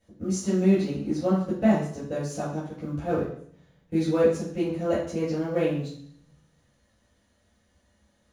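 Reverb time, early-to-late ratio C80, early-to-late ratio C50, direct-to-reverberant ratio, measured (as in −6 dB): 0.60 s, 7.5 dB, 3.0 dB, −12.5 dB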